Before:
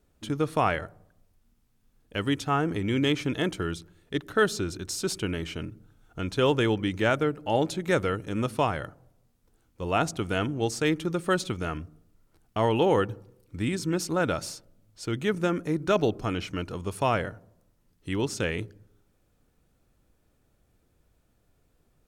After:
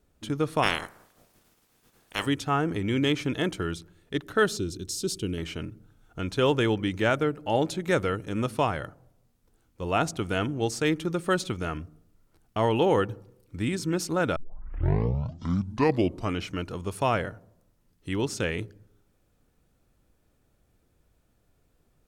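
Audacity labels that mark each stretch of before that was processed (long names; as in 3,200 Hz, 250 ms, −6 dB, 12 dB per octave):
0.620000	2.250000	ceiling on every frequency bin ceiling under each frame's peak by 27 dB
4.570000	5.380000	flat-topped bell 1,200 Hz −13 dB 2.3 octaves
14.360000	14.360000	tape start 2.04 s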